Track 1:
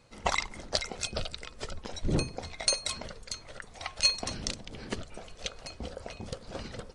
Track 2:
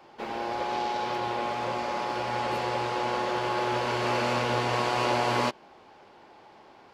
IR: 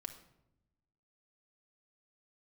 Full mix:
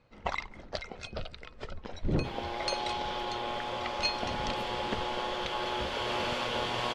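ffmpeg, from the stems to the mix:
-filter_complex "[0:a]lowpass=3k,dynaudnorm=f=650:g=5:m=4dB,volume=-4dB[a];[1:a]equalizer=f=3.3k:w=4.5:g=11.5,bandreject=f=122.3:t=h:w=4,bandreject=f=244.6:t=h:w=4,bandreject=f=366.9:t=h:w=4,bandreject=f=489.2:t=h:w=4,bandreject=f=611.5:t=h:w=4,bandreject=f=733.8:t=h:w=4,bandreject=f=856.1:t=h:w=4,bandreject=f=978.4:t=h:w=4,bandreject=f=1.1007k:t=h:w=4,bandreject=f=1.223k:t=h:w=4,bandreject=f=1.3453k:t=h:w=4,bandreject=f=1.4676k:t=h:w=4,bandreject=f=1.5899k:t=h:w=4,bandreject=f=1.7122k:t=h:w=4,bandreject=f=1.8345k:t=h:w=4,bandreject=f=1.9568k:t=h:w=4,bandreject=f=2.0791k:t=h:w=4,bandreject=f=2.2014k:t=h:w=4,bandreject=f=2.3237k:t=h:w=4,bandreject=f=2.446k:t=h:w=4,bandreject=f=2.5683k:t=h:w=4,bandreject=f=2.6906k:t=h:w=4,bandreject=f=2.8129k:t=h:w=4,bandreject=f=2.9352k:t=h:w=4,bandreject=f=3.0575k:t=h:w=4,bandreject=f=3.1798k:t=h:w=4,bandreject=f=3.3021k:t=h:w=4,bandreject=f=3.4244k:t=h:w=4,bandreject=f=3.5467k:t=h:w=4,bandreject=f=3.669k:t=h:w=4,bandreject=f=3.7913k:t=h:w=4,bandreject=f=3.9136k:t=h:w=4,bandreject=f=4.0359k:t=h:w=4,bandreject=f=4.1582k:t=h:w=4,bandreject=f=4.2805k:t=h:w=4,adelay=2050,volume=-5.5dB[b];[a][b]amix=inputs=2:normalize=0"

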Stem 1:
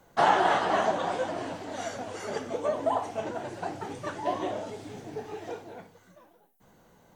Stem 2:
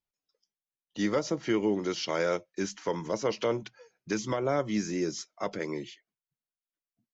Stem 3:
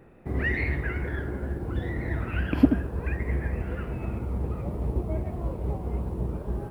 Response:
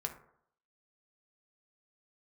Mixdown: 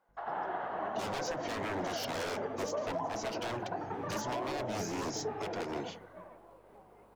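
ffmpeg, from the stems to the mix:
-filter_complex "[0:a]dynaudnorm=f=150:g=11:m=16dB,lowpass=1.6k,aeval=exprs='val(0)+0.00224*(sin(2*PI*50*n/s)+sin(2*PI*2*50*n/s)/2+sin(2*PI*3*50*n/s)/3+sin(2*PI*4*50*n/s)/4+sin(2*PI*5*50*n/s)/5)':c=same,volume=-10dB,asplit=2[a][b];[b]volume=-5.5dB[c];[1:a]aeval=exprs='0.0282*(abs(mod(val(0)/0.0282+3,4)-2)-1)':c=same,volume=-1dB[d];[2:a]adelay=1050,volume=-14.5dB[e];[a][e]amix=inputs=2:normalize=0,highpass=640,acompressor=threshold=-40dB:ratio=5,volume=0dB[f];[c]aecho=0:1:90|180|270|360:1|0.23|0.0529|0.0122[g];[d][f][g]amix=inputs=3:normalize=0,alimiter=level_in=2.5dB:limit=-24dB:level=0:latency=1:release=169,volume=-2.5dB"

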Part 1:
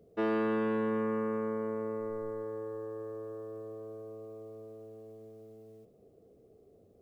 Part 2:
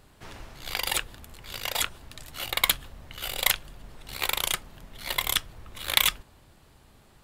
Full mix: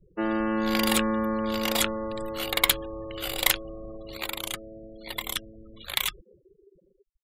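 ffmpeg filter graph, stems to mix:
-filter_complex "[0:a]aecho=1:1:5.6:0.82,volume=1dB[a];[1:a]volume=-2dB,afade=t=out:st=3.93:d=0.37:silence=0.398107[b];[a][b]amix=inputs=2:normalize=0,afftfilt=real='re*gte(hypot(re,im),0.00708)':imag='im*gte(hypot(re,im),0.00708)':win_size=1024:overlap=0.75,dynaudnorm=f=280:g=5:m=4.5dB"

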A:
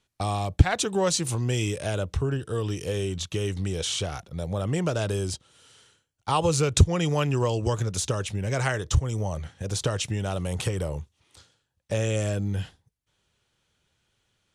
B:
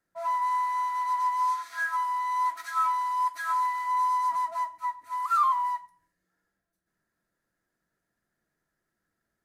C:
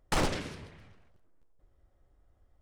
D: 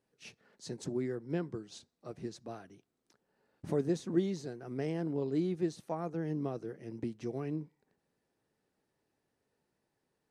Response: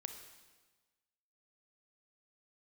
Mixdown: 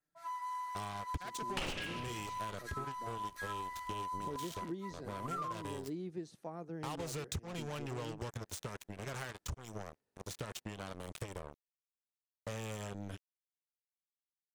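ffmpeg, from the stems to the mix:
-filter_complex "[0:a]acrusher=bits=3:mix=0:aa=0.5,adelay=550,volume=-13.5dB[a];[1:a]equalizer=f=1.3k:t=o:w=1.9:g=-3.5,aecho=1:1:6.7:0.88,volume=-10dB[b];[2:a]equalizer=f=2.8k:t=o:w=0.62:g=14,adelay=1450,volume=1dB[c];[3:a]adelay=550,volume=-7dB[d];[a][b][c][d]amix=inputs=4:normalize=0,acompressor=threshold=-37dB:ratio=6"

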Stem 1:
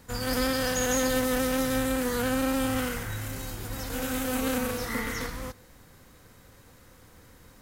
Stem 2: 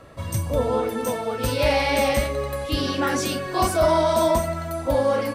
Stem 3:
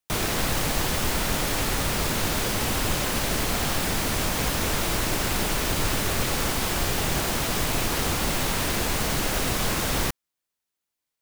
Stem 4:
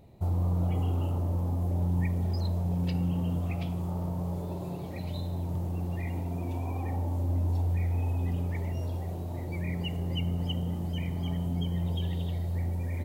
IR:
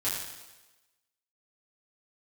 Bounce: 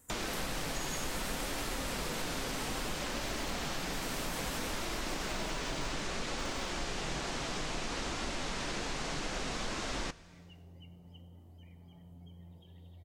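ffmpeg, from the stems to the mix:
-filter_complex "[0:a]highshelf=f=6.1k:t=q:w=3:g=9.5,volume=-11.5dB,asplit=2[a][b];[b]volume=-11dB[c];[1:a]afwtdn=0.0631,acrusher=bits=4:dc=4:mix=0:aa=0.000001,adelay=1500,volume=-18dB,asplit=2[d][e];[e]volume=-13dB[f];[2:a]lowpass=f=7.3k:w=0.5412,lowpass=f=7.3k:w=1.3066,equalizer=f=89:t=o:w=0.55:g=-14.5,volume=2.5dB,asplit=2[g][h];[h]volume=-24dB[i];[3:a]adelay=650,volume=-19dB,asplit=2[j][k];[k]volume=-16.5dB[l];[4:a]atrim=start_sample=2205[m];[c][f][i][l]amix=inputs=4:normalize=0[n];[n][m]afir=irnorm=-1:irlink=0[o];[a][d][g][j][o]amix=inputs=5:normalize=0,flanger=delay=2.9:depth=4.5:regen=-65:speed=0.61:shape=sinusoidal,acompressor=threshold=-41dB:ratio=2"

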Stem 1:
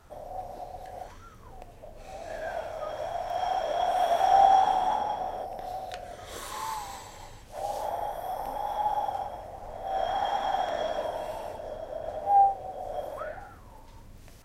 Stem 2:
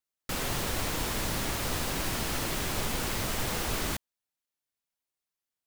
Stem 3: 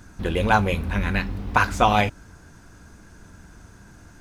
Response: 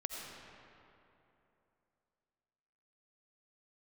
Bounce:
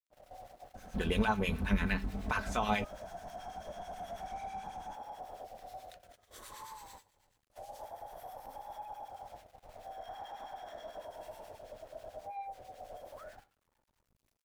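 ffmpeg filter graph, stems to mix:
-filter_complex "[0:a]highshelf=f=10k:g=5,asoftclip=type=tanh:threshold=-18dB,volume=-8.5dB[a];[2:a]aecho=1:1:4.6:0.51,alimiter=limit=-10.5dB:level=0:latency=1:release=270,adelay=750,volume=-5dB[b];[a]aeval=exprs='val(0)*gte(abs(val(0)),0.00224)':c=same,alimiter=level_in=11.5dB:limit=-24dB:level=0:latency=1:release=87,volume=-11.5dB,volume=0dB[c];[b][c]amix=inputs=2:normalize=0,agate=range=-15dB:threshold=-49dB:ratio=16:detection=peak,acrossover=split=1300[d][e];[d]aeval=exprs='val(0)*(1-0.7/2+0.7/2*cos(2*PI*9.2*n/s))':c=same[f];[e]aeval=exprs='val(0)*(1-0.7/2-0.7/2*cos(2*PI*9.2*n/s))':c=same[g];[f][g]amix=inputs=2:normalize=0"

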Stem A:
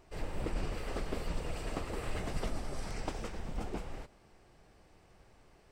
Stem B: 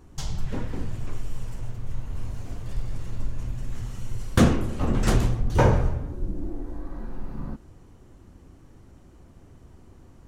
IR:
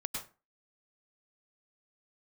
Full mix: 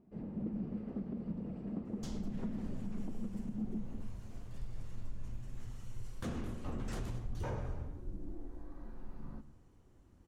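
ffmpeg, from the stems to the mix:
-filter_complex "[0:a]bandpass=f=210:t=q:w=1.5:csg=0,equalizer=f=210:t=o:w=0.41:g=14,volume=1dB[a];[1:a]adelay=1850,volume=-15dB,asplit=3[b][c][d];[c]volume=-13.5dB[e];[d]volume=-20dB[f];[2:a]atrim=start_sample=2205[g];[e][g]afir=irnorm=-1:irlink=0[h];[f]aecho=0:1:214:1[i];[a][b][h][i]amix=inputs=4:normalize=0,alimiter=level_in=6dB:limit=-24dB:level=0:latency=1:release=108,volume=-6dB"

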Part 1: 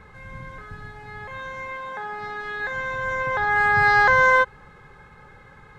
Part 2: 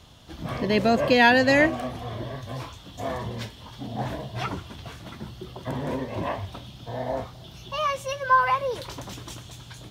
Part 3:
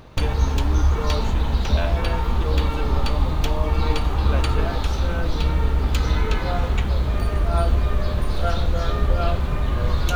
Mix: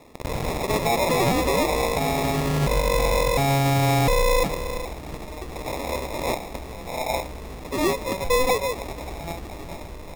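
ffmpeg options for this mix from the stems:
-filter_complex "[0:a]acrusher=bits=5:mix=0:aa=0.000001,volume=2.5dB,asplit=2[a][b];[b]volume=-23dB[c];[1:a]highpass=520,asoftclip=type=tanh:threshold=-16.5dB,acrusher=bits=3:mode=log:mix=0:aa=0.000001,volume=-1dB[d];[2:a]lowshelf=f=280:g=-11.5,adelay=1700,volume=-14.5dB,asplit=2[e][f];[f]volume=-6.5dB[g];[c][g]amix=inputs=2:normalize=0,aecho=0:1:417:1[h];[a][d][e][h]amix=inputs=4:normalize=0,acrusher=samples=29:mix=1:aa=0.000001,acontrast=54,alimiter=limit=-15dB:level=0:latency=1:release=35"

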